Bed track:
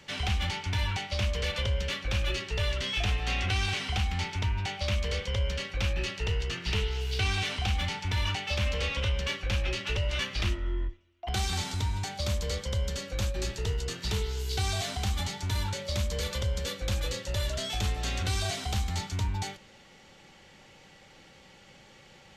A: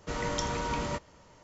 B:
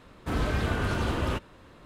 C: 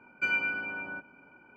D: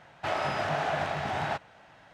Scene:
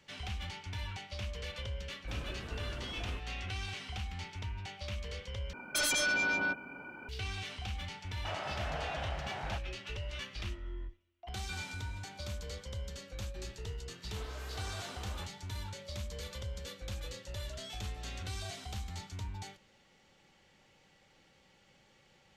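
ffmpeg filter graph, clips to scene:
ffmpeg -i bed.wav -i cue0.wav -i cue1.wav -i cue2.wav -i cue3.wav -filter_complex "[2:a]asplit=2[link_01][link_02];[3:a]asplit=2[link_03][link_04];[0:a]volume=-11dB[link_05];[link_03]aeval=exprs='0.119*sin(PI/2*5.01*val(0)/0.119)':channel_layout=same[link_06];[link_04]asplit=2[link_07][link_08];[link_08]adelay=571.4,volume=-10dB,highshelf=frequency=4000:gain=-12.9[link_09];[link_07][link_09]amix=inputs=2:normalize=0[link_10];[link_02]highpass=470[link_11];[link_05]asplit=2[link_12][link_13];[link_12]atrim=end=5.534[link_14];[link_06]atrim=end=1.56,asetpts=PTS-STARTPTS,volume=-9dB[link_15];[link_13]atrim=start=7.086[link_16];[link_01]atrim=end=1.85,asetpts=PTS-STARTPTS,volume=-17dB,afade=type=in:duration=0.004:curve=hsin,afade=type=out:start_time=1.846:duration=0.004:curve=hsin,adelay=1810[link_17];[4:a]atrim=end=2.13,asetpts=PTS-STARTPTS,volume=-10.5dB,afade=type=in:duration=0.004:curve=hsin,afade=type=out:start_time=2.126:duration=0.004:curve=hsin,adelay=8010[link_18];[link_10]atrim=end=1.56,asetpts=PTS-STARTPTS,volume=-17dB,afade=type=in:duration=0.004:curve=hsin,afade=type=out:start_time=1.556:duration=0.004:curve=hsin,adelay=11270[link_19];[link_11]atrim=end=1.85,asetpts=PTS-STARTPTS,volume=-15.5dB,afade=type=in:duration=0.004:curve=hsin,afade=type=out:start_time=1.846:duration=0.004:curve=hsin,adelay=13880[link_20];[link_14][link_15]acrossfade=duration=0.004:curve1=hsin:curve2=hsin[link_21];[link_21][link_16]acrossfade=duration=0.004:curve1=hsin:curve2=hsin[link_22];[link_22][link_17][link_18][link_19][link_20]amix=inputs=5:normalize=0" out.wav

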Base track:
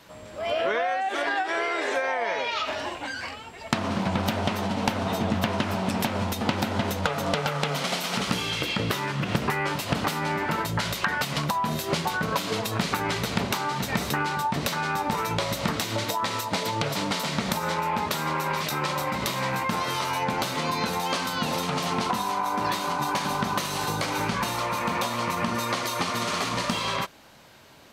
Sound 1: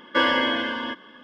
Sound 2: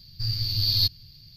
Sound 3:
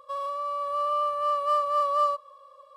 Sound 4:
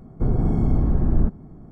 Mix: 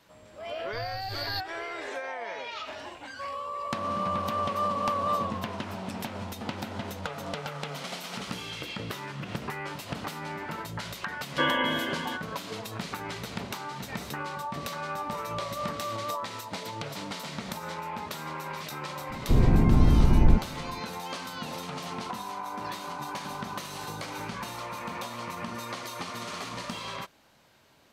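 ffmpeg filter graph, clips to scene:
ffmpeg -i bed.wav -i cue0.wav -i cue1.wav -i cue2.wav -i cue3.wav -filter_complex "[3:a]asplit=2[link_01][link_02];[0:a]volume=-9.5dB[link_03];[link_01]asplit=7[link_04][link_05][link_06][link_07][link_08][link_09][link_10];[link_05]adelay=131,afreqshift=-56,volume=-8.5dB[link_11];[link_06]adelay=262,afreqshift=-112,volume=-14.7dB[link_12];[link_07]adelay=393,afreqshift=-168,volume=-20.9dB[link_13];[link_08]adelay=524,afreqshift=-224,volume=-27.1dB[link_14];[link_09]adelay=655,afreqshift=-280,volume=-33.3dB[link_15];[link_10]adelay=786,afreqshift=-336,volume=-39.5dB[link_16];[link_04][link_11][link_12][link_13][link_14][link_15][link_16]amix=inputs=7:normalize=0[link_17];[1:a]aresample=8000,aresample=44100[link_18];[link_02]tiltshelf=frequency=970:gain=5.5[link_19];[2:a]atrim=end=1.36,asetpts=PTS-STARTPTS,volume=-13dB,afade=type=in:duration=0.004:curve=hsin,afade=type=out:start_time=1.356:duration=0.004:curve=hsin,adelay=530[link_20];[link_17]atrim=end=2.76,asetpts=PTS-STARTPTS,volume=-5dB,afade=type=in:duration=0.004:curve=hsin,afade=type=out:start_time=2.756:duration=0.004:curve=hsin,adelay=3100[link_21];[link_18]atrim=end=1.23,asetpts=PTS-STARTPTS,volume=-5.5dB,afade=type=in:duration=0.004:curve=hsin,afade=type=out:start_time=1.226:duration=0.004:curve=hsin,adelay=11230[link_22];[link_19]atrim=end=2.76,asetpts=PTS-STARTPTS,volume=-10.5dB,afade=type=in:duration=0.004:curve=hsin,afade=type=out:start_time=2.756:duration=0.004:curve=hsin,adelay=14090[link_23];[4:a]atrim=end=1.71,asetpts=PTS-STARTPTS,afade=type=in:duration=0.004:curve=hsin,afade=type=out:start_time=1.706:duration=0.004:curve=hsin,adelay=19090[link_24];[link_03][link_20][link_21][link_22][link_23][link_24]amix=inputs=6:normalize=0" out.wav

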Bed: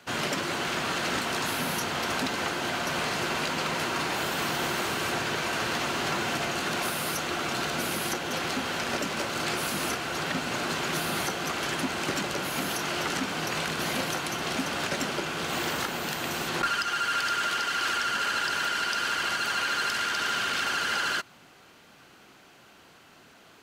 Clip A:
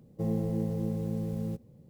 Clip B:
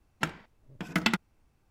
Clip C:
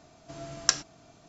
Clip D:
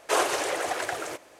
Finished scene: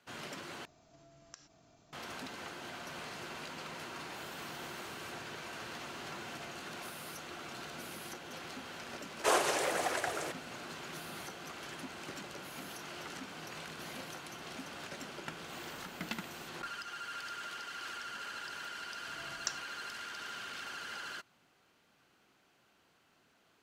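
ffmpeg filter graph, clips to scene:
ffmpeg -i bed.wav -i cue0.wav -i cue1.wav -i cue2.wav -i cue3.wav -filter_complex "[3:a]asplit=2[link_01][link_02];[0:a]volume=-15.5dB[link_03];[link_01]acompressor=threshold=-56dB:ratio=4:attack=21:release=56:knee=1:detection=peak[link_04];[4:a]volume=15dB,asoftclip=hard,volume=-15dB[link_05];[link_03]asplit=2[link_06][link_07];[link_06]atrim=end=0.654[link_08];[link_04]atrim=end=1.28,asetpts=PTS-STARTPTS,volume=-8dB[link_09];[link_07]atrim=start=1.926[link_10];[link_05]atrim=end=1.39,asetpts=PTS-STARTPTS,volume=-4.5dB,afade=type=in:duration=0.004:curve=hsin,afade=type=out:start_time=1.386:duration=0.004:curve=hsin,adelay=9150[link_11];[2:a]atrim=end=1.7,asetpts=PTS-STARTPTS,volume=-14.5dB,afade=type=in:duration=0.004:curve=hsin,afade=type=out:start_time=1.696:duration=0.004:curve=hsin,adelay=15050[link_12];[link_02]atrim=end=1.28,asetpts=PTS-STARTPTS,volume=-14dB,afade=type=in:duration=0.004:curve=hsin,afade=type=out:start_time=1.276:duration=0.004:curve=hsin,adelay=18780[link_13];[link_08][link_09]acrossfade=duration=0.004:curve1=hsin:curve2=hsin[link_14];[link_14][link_10]acrossfade=duration=0.004:curve1=hsin:curve2=hsin[link_15];[link_15][link_11][link_12][link_13]amix=inputs=4:normalize=0" out.wav

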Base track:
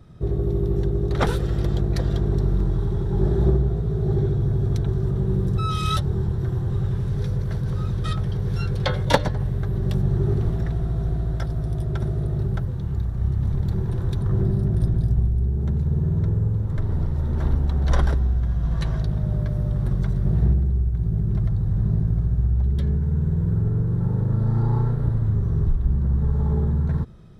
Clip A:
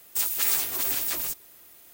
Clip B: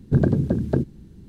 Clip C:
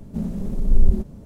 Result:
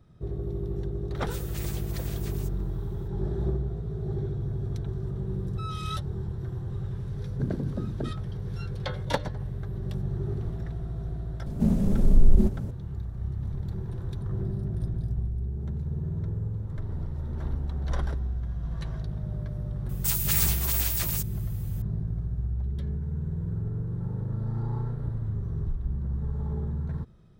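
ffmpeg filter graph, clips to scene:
ffmpeg -i bed.wav -i cue0.wav -i cue1.wav -i cue2.wav -filter_complex "[1:a]asplit=2[link_01][link_02];[0:a]volume=-9.5dB[link_03];[link_01]highshelf=frequency=7900:gain=-8[link_04];[3:a]alimiter=level_in=10.5dB:limit=-1dB:release=50:level=0:latency=1[link_05];[link_04]atrim=end=1.93,asetpts=PTS-STARTPTS,volume=-12.5dB,afade=type=in:duration=0.004:curve=hsin,afade=type=out:start_time=1.926:duration=0.004:curve=hsin,adelay=1150[link_06];[2:a]atrim=end=1.28,asetpts=PTS-STARTPTS,volume=-11.5dB,afade=type=in:duration=0.004:curve=hsin,afade=type=out:start_time=1.276:duration=0.004:curve=hsin,adelay=7270[link_07];[link_05]atrim=end=1.25,asetpts=PTS-STARTPTS,volume=-7dB,afade=type=in:duration=0.004:curve=hsin,afade=type=out:start_time=1.246:duration=0.004:curve=hsin,adelay=505386S[link_08];[link_02]atrim=end=1.93,asetpts=PTS-STARTPTS,volume=-1dB,afade=type=in:duration=0.004:curve=hsin,afade=type=out:start_time=1.926:duration=0.004:curve=hsin,adelay=19890[link_09];[link_03][link_06][link_07][link_08][link_09]amix=inputs=5:normalize=0" out.wav

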